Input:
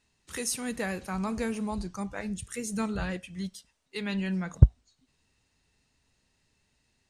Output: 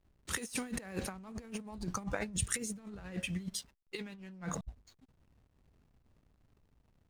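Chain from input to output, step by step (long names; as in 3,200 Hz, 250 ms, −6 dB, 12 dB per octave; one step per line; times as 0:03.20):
compressor whose output falls as the input rises −39 dBFS, ratio −0.5
0:04.23–0:04.64: transient designer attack 0 dB, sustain +6 dB
slack as between gear wheels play −51.5 dBFS
level −1.5 dB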